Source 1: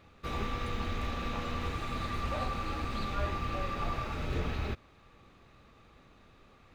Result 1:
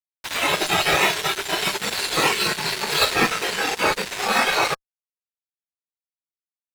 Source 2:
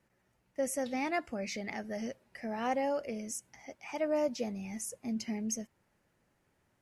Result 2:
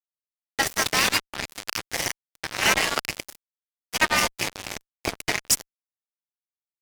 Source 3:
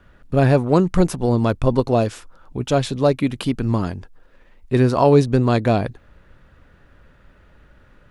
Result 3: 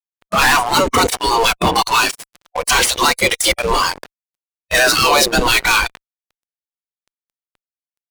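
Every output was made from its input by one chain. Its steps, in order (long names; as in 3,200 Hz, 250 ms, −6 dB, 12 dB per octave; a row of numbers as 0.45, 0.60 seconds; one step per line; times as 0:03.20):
gate on every frequency bin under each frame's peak −20 dB weak
fuzz pedal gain 44 dB, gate −48 dBFS
noise reduction from a noise print of the clip's start 9 dB
level +4 dB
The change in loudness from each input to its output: +15.0, +11.5, +4.5 LU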